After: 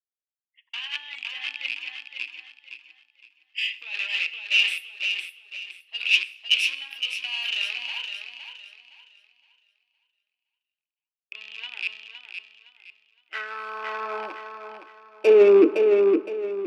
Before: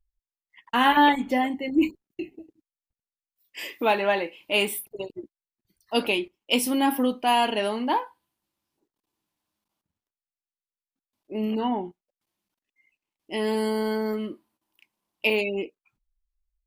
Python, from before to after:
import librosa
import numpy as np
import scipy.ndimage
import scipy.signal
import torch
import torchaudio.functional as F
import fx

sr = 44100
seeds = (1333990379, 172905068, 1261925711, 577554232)

y = fx.rattle_buzz(x, sr, strikes_db=-40.0, level_db=-21.0)
y = scipy.signal.sosfilt(scipy.signal.butter(2, 4400.0, 'lowpass', fs=sr, output='sos'), y)
y = fx.peak_eq(y, sr, hz=370.0, db=6.0, octaves=1.8)
y = fx.over_compress(y, sr, threshold_db=-22.0, ratio=-1.0)
y = 10.0 ** (-21.5 / 20.0) * np.tanh(y / 10.0 ** (-21.5 / 20.0))
y = fx.filter_sweep_highpass(y, sr, from_hz=2700.0, to_hz=200.0, start_s=12.57, end_s=16.17, q=4.5)
y = fx.echo_feedback(y, sr, ms=514, feedback_pct=48, wet_db=-4.5)
y = fx.rev_schroeder(y, sr, rt60_s=1.8, comb_ms=30, drr_db=17.0)
y = fx.band_widen(y, sr, depth_pct=70)
y = F.gain(torch.from_numpy(y), -2.0).numpy()